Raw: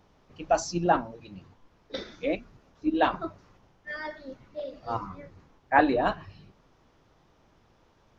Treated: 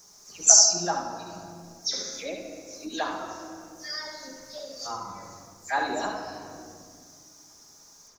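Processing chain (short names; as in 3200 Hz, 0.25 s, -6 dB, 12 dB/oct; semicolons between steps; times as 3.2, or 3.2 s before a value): spectral delay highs early, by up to 0.116 s; tilt +3 dB/oct; on a send: echo 71 ms -6 dB; on the sum: reverb RT60 1.8 s, pre-delay 5 ms, DRR 4 dB; in parallel at +3 dB: compressor, threshold -38 dBFS, peak gain reduction 21 dB; on the sum: resonant high shelf 4300 Hz +13 dB, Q 3; gain -7 dB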